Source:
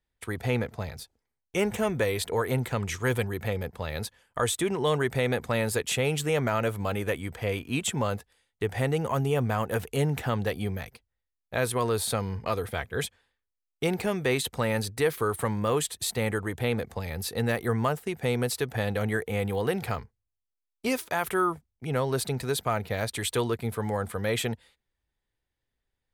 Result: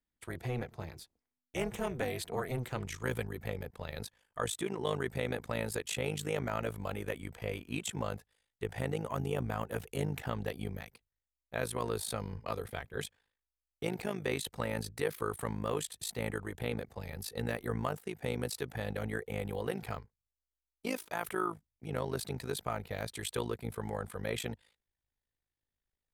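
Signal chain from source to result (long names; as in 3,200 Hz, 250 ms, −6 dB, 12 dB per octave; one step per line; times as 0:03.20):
amplitude modulation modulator 250 Hz, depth 75%, from 0:02.83 modulator 53 Hz
level −5 dB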